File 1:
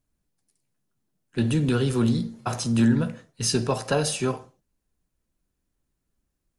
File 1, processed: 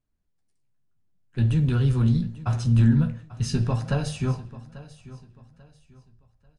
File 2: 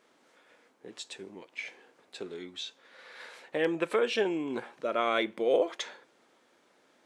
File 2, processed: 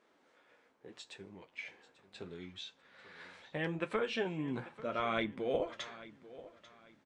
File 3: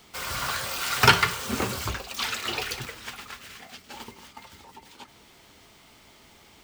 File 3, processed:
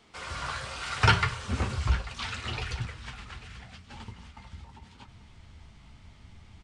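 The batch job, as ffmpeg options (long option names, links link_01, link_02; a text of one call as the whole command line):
ffmpeg -i in.wav -af "highshelf=frequency=5500:gain=-11,aresample=22050,aresample=44100,asubboost=boost=11.5:cutoff=120,flanger=delay=8.7:depth=6.8:regen=-45:speed=0.77:shape=triangular,aecho=1:1:841|1682|2523:0.133|0.0413|0.0128" out.wav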